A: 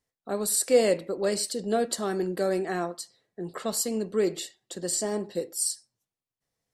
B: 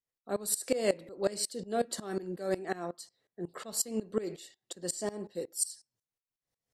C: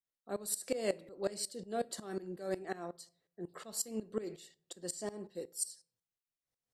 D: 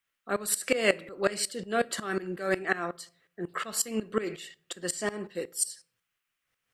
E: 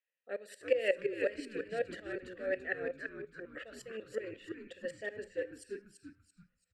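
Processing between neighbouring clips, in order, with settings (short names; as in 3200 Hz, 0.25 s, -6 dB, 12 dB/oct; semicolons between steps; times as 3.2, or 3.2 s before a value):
dB-ramp tremolo swelling 5.5 Hz, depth 20 dB
on a send at -21 dB: high shelf 8000 Hz +8.5 dB + reverb RT60 0.60 s, pre-delay 3 ms; on the sum: gain -5.5 dB
band shelf 1900 Hz +11 dB; gain +8 dB
vowel filter e; frequency-shifting echo 0.336 s, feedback 35%, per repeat -110 Hz, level -6 dB; gain +1.5 dB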